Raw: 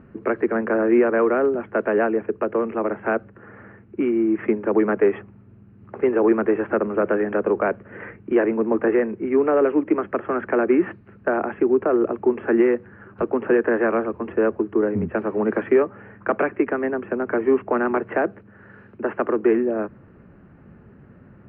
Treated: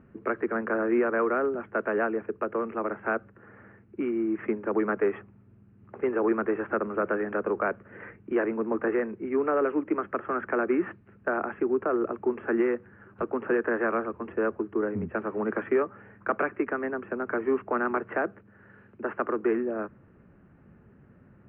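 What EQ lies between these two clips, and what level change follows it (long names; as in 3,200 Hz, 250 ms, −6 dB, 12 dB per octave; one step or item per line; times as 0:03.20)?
dynamic equaliser 1,300 Hz, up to +6 dB, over −40 dBFS, Q 2.1
high-frequency loss of the air 330 metres
high-shelf EQ 2,400 Hz +9 dB
−7.5 dB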